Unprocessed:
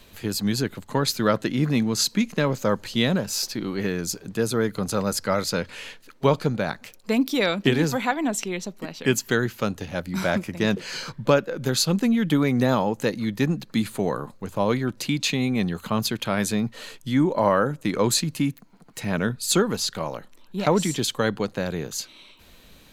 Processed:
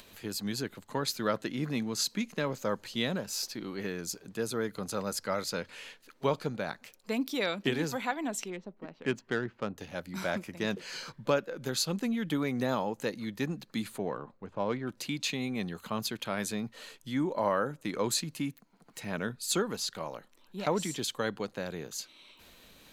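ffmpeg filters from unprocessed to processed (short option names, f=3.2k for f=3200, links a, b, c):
-filter_complex "[0:a]asettb=1/sr,asplit=3[a][b][c];[a]atrim=end=8.504[d];[b]atrim=start=8.5:end=9.78,asetpts=PTS-STARTPTS,afade=t=in:d=0.004:c=qsin,afade=t=out:st=1.276:d=0.004:c=qsin,adynamicsmooth=sensitivity=1:basefreq=1.4k[e];[c]atrim=start=9.776[f];[d][e]acrossfade=d=0.004:c1=hsin:c2=qsin[g];[g][f]acrossfade=d=0.004:c1=qsin:c2=hsin,asettb=1/sr,asplit=3[h][i][j];[h]atrim=end=13.984[k];[i]atrim=start=13.98:end=14.87,asetpts=PTS-STARTPTS,afade=t=in:d=0.004:c=qsin,afade=t=out:st=0.886:d=0.004:c=qsin,adynamicsmooth=sensitivity=1:basefreq=2.5k[l];[j]atrim=start=14.866[m];[k][l]acrossfade=d=0.004:c1=hsin:c2=qsin[n];[n][m]acrossfade=d=0.004:c1=qsin:c2=hsin,acompressor=mode=upward:threshold=-38dB:ratio=2.5,lowshelf=f=160:g=-8.5,volume=-8dB"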